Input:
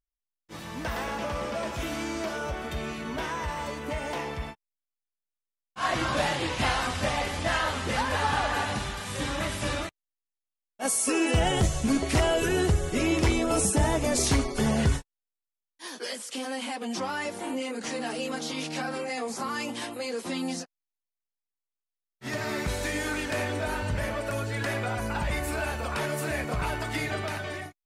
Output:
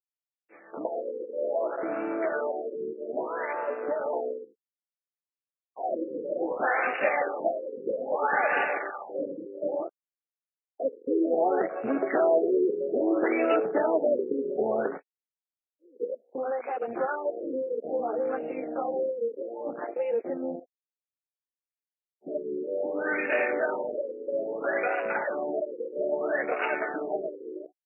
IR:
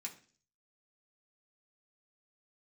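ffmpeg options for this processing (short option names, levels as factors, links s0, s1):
-filter_complex "[0:a]highpass=f=380:w=0.5412,highpass=f=380:w=1.3066,afwtdn=0.02,lowpass=3700,equalizer=f=1000:t=o:w=0.53:g=-12.5,asplit=2[s0][s1];[s1]acompressor=threshold=0.00794:ratio=6,volume=1[s2];[s0][s2]amix=inputs=2:normalize=0,afftfilt=real='re*lt(b*sr/1024,520*pow(2900/520,0.5+0.5*sin(2*PI*0.61*pts/sr)))':imag='im*lt(b*sr/1024,520*pow(2900/520,0.5+0.5*sin(2*PI*0.61*pts/sr)))':win_size=1024:overlap=0.75,volume=1.88"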